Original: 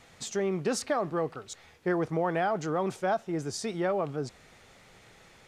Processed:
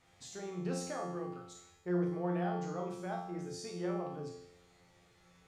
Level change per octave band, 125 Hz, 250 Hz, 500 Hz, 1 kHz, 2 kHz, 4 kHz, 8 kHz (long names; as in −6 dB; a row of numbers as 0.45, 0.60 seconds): −3.0, −5.0, −9.5, −10.0, −12.5, −10.0, −9.5 decibels